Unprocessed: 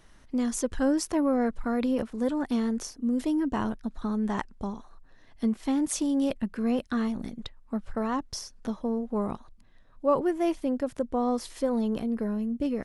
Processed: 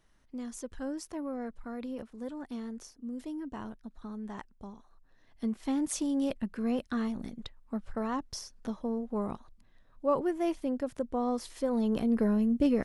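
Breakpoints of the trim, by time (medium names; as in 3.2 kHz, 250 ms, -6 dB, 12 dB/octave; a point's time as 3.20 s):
4.70 s -12 dB
5.72 s -4 dB
11.62 s -4 dB
12.18 s +3 dB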